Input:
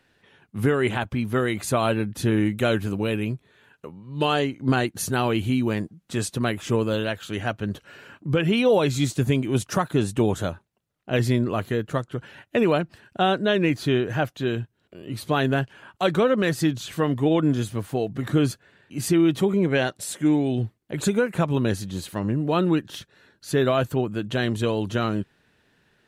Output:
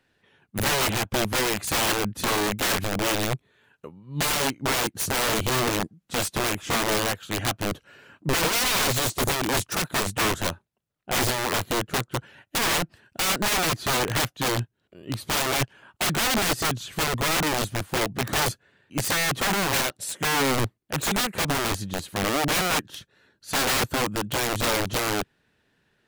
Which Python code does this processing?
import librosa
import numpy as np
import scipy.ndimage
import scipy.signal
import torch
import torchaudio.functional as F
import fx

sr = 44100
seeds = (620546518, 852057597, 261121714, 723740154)

y = (np.mod(10.0 ** (21.5 / 20.0) * x + 1.0, 2.0) - 1.0) / 10.0 ** (21.5 / 20.0)
y = fx.upward_expand(y, sr, threshold_db=-42.0, expansion=1.5)
y = y * 10.0 ** (4.0 / 20.0)